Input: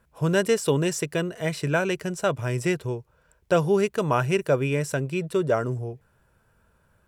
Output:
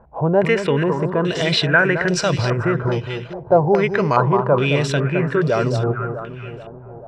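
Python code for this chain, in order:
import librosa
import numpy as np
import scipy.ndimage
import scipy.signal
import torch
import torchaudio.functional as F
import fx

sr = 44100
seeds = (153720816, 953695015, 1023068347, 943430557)

p1 = fx.over_compress(x, sr, threshold_db=-32.0, ratio=-1.0)
p2 = x + F.gain(torch.from_numpy(p1), 2.0).numpy()
p3 = fx.echo_alternate(p2, sr, ms=216, hz=1200.0, feedback_pct=69, wet_db=-7.0)
p4 = fx.resample_bad(p3, sr, factor=8, down='filtered', up='hold', at=(2.73, 4.41))
p5 = fx.filter_held_lowpass(p4, sr, hz=2.4, low_hz=800.0, high_hz=4700.0)
y = F.gain(torch.from_numpy(p5), 1.5).numpy()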